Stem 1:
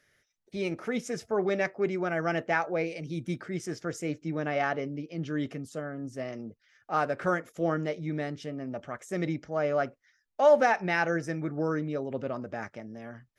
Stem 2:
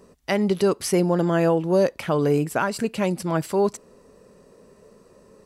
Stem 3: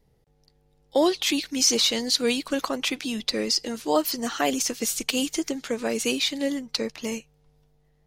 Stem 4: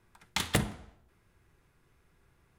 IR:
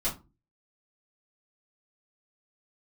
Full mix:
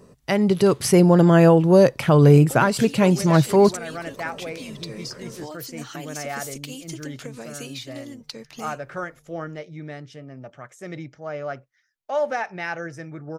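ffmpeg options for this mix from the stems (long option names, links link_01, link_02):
-filter_complex "[0:a]lowshelf=frequency=300:gain=-9.5,adelay=1700,volume=-7.5dB[link_01];[1:a]volume=0.5dB[link_02];[2:a]acompressor=threshold=-33dB:ratio=6,highshelf=frequency=5800:gain=5,adelay=1550,volume=-8.5dB[link_03];[3:a]acompressor=threshold=-37dB:ratio=2.5,adelay=300,volume=-12.5dB[link_04];[link_01][link_02][link_03][link_04]amix=inputs=4:normalize=0,equalizer=frequency=130:width=2.8:gain=13,dynaudnorm=framelen=180:gausssize=9:maxgain=6dB"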